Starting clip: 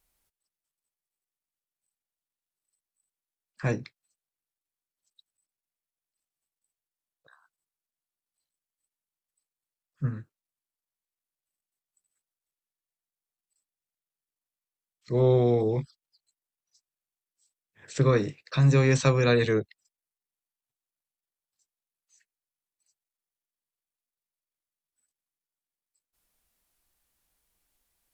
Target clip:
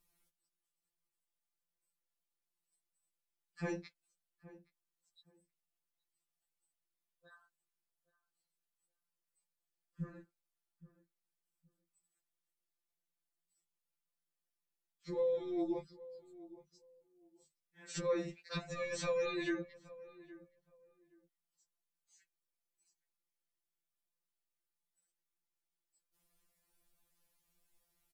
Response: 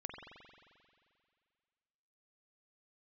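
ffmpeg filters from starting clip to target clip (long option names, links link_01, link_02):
-filter_complex "[0:a]lowshelf=frequency=490:gain=4.5,alimiter=limit=-16.5dB:level=0:latency=1:release=18,acompressor=threshold=-36dB:ratio=1.5,asplit=2[link_01][link_02];[link_02]adelay=820,lowpass=frequency=1200:poles=1,volume=-17.5dB,asplit=2[link_03][link_04];[link_04]adelay=820,lowpass=frequency=1200:poles=1,volume=0.21[link_05];[link_01][link_03][link_05]amix=inputs=3:normalize=0,afftfilt=real='re*2.83*eq(mod(b,8),0)':imag='im*2.83*eq(mod(b,8),0)':win_size=2048:overlap=0.75,volume=-1.5dB"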